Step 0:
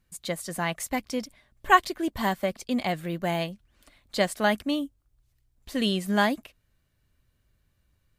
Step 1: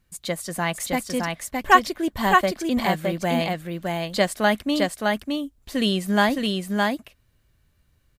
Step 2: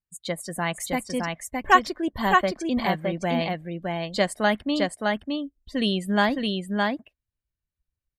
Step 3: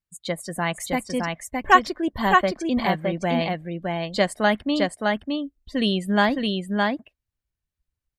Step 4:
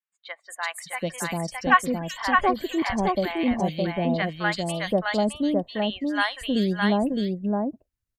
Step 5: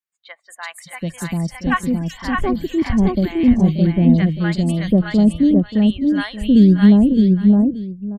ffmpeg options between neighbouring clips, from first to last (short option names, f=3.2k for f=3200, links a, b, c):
-af "aecho=1:1:614:0.708,volume=3.5dB"
-af "afftdn=nr=25:nf=-40,volume=-2dB"
-af "highshelf=f=6.8k:g=-4,volume=2dB"
-filter_complex "[0:a]acrossover=split=830|3200[a][b][c];[c]adelay=380[d];[a]adelay=740[e];[e][b][d]amix=inputs=3:normalize=0"
-af "asubboost=boost=11.5:cutoff=240,aecho=1:1:581:0.2,volume=-1dB"